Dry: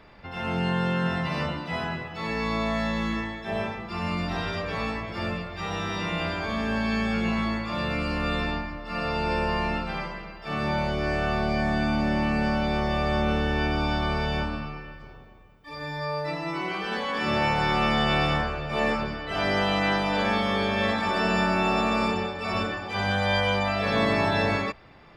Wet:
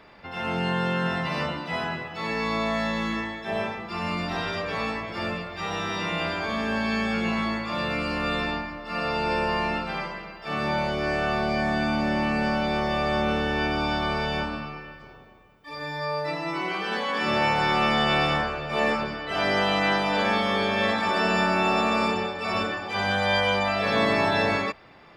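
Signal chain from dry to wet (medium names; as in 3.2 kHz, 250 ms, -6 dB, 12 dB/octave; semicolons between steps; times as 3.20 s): bass shelf 120 Hz -11.5 dB; trim +2 dB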